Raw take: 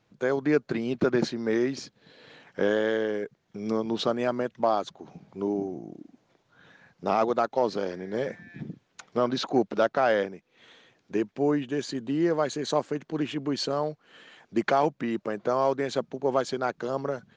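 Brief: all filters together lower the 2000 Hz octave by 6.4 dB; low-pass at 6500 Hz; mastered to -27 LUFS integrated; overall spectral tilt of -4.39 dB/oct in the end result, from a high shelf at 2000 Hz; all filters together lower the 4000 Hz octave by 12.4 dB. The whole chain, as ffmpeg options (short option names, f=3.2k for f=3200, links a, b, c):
-af "lowpass=6.5k,highshelf=f=2k:g=-6,equalizer=f=2k:t=o:g=-4,equalizer=f=4k:t=o:g=-7.5,volume=2dB"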